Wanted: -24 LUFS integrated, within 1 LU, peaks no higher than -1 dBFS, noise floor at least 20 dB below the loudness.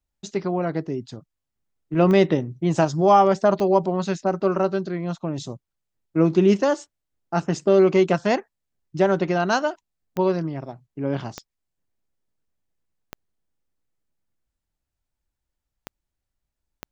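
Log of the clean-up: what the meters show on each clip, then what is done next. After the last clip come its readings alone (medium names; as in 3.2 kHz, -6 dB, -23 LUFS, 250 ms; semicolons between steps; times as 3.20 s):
clicks found 7; loudness -21.5 LUFS; peak level -5.5 dBFS; loudness target -24.0 LUFS
-> de-click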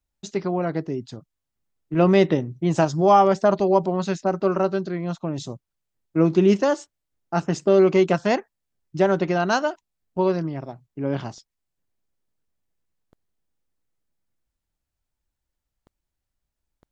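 clicks found 0; loudness -21.5 LUFS; peak level -5.5 dBFS; loudness target -24.0 LUFS
-> trim -2.5 dB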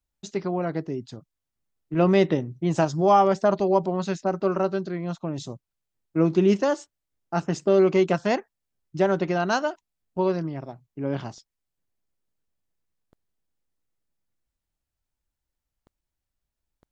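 loudness -24.0 LUFS; peak level -8.0 dBFS; noise floor -85 dBFS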